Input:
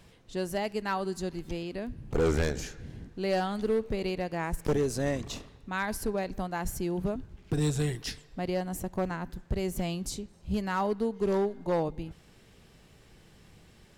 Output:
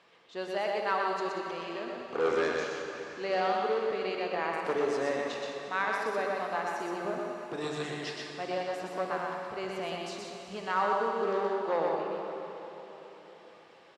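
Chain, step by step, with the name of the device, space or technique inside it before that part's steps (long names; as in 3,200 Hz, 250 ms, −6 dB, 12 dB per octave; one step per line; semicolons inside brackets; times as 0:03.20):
station announcement (band-pass filter 480–3,700 Hz; parametric band 1,200 Hz +6.5 dB 0.21 octaves; loudspeakers that aren't time-aligned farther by 42 metres −3 dB, 63 metres −11 dB; convolution reverb RT60 4.2 s, pre-delay 24 ms, DRR 3 dB)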